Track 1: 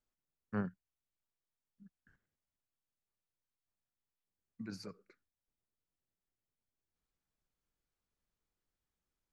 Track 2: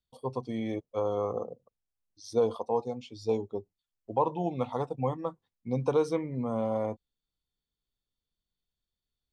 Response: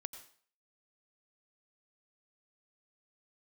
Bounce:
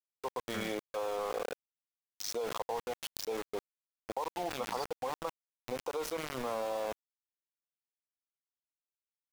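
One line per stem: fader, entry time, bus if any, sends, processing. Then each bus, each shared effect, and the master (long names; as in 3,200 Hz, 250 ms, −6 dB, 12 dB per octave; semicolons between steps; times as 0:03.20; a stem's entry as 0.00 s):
−12.0 dB, 0.00 s, no send, parametric band 3,500 Hz +14.5 dB 2.2 octaves
−1.5 dB, 0.00 s, send −14.5 dB, high-pass filter 550 Hz 12 dB per octave; downward compressor 5 to 1, threshold −35 dBFS, peak gain reduction 11.5 dB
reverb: on, RT60 0.50 s, pre-delay 82 ms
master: centre clipping without the shift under −43.5 dBFS; envelope flattener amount 70%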